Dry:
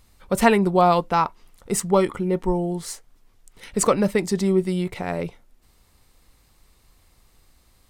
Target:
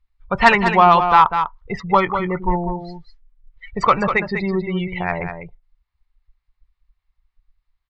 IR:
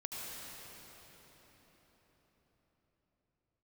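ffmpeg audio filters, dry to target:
-filter_complex "[0:a]lowpass=frequency=4400:width=0.5412,lowpass=frequency=4400:width=1.3066,afftdn=noise_reduction=31:noise_floor=-34,equalizer=frequency=250:width_type=o:width=1:gain=-12,equalizer=frequency=500:width_type=o:width=1:gain=-8,equalizer=frequency=1000:width_type=o:width=1:gain=5,equalizer=frequency=2000:width_type=o:width=1:gain=5,asoftclip=type=tanh:threshold=-8dB,asplit=2[link_01][link_02];[link_02]aecho=0:1:198:0.398[link_03];[link_01][link_03]amix=inputs=2:normalize=0,volume=7dB"

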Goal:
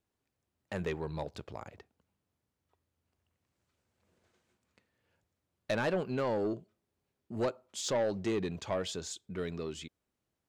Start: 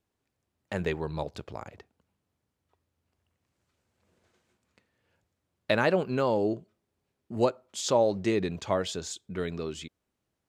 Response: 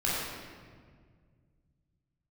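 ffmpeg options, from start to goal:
-af "asoftclip=type=tanh:threshold=-21.5dB,volume=-3.5dB"

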